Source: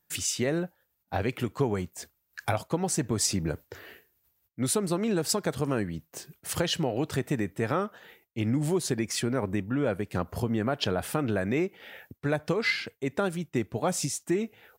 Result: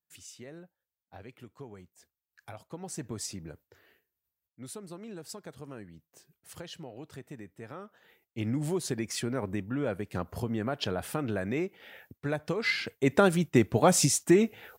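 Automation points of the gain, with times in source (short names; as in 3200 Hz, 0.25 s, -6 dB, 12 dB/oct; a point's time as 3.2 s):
2.41 s -19 dB
3.07 s -9 dB
3.66 s -16 dB
7.78 s -16 dB
8.39 s -4 dB
12.58 s -4 dB
13.09 s +6 dB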